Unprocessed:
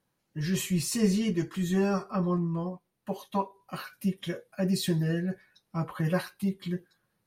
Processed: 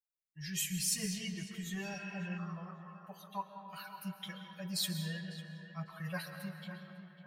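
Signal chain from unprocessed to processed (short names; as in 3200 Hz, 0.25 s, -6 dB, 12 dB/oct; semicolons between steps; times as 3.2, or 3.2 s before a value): per-bin expansion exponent 1.5; resonant low shelf 130 Hz -8.5 dB, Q 3; narrowing echo 0.55 s, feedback 43%, band-pass 1100 Hz, level -9.5 dB; on a send at -6 dB: reverb RT60 2.9 s, pre-delay 95 ms; on the sum: spectral repair 1.9–2.35, 820–3200 Hz before; passive tone stack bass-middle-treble 10-0-10; gain +2 dB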